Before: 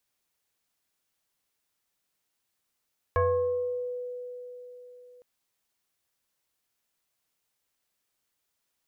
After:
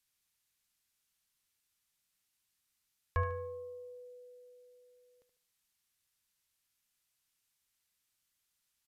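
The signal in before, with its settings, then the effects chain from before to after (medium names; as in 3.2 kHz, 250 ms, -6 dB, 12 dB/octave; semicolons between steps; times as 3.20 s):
FM tone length 2.06 s, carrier 494 Hz, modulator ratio 1.18, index 1.4, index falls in 1.09 s exponential, decay 4.01 s, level -20 dB
peaking EQ 520 Hz -12.5 dB 2.3 oct; on a send: feedback delay 74 ms, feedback 34%, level -9.5 dB; on the sum: resampled via 32 kHz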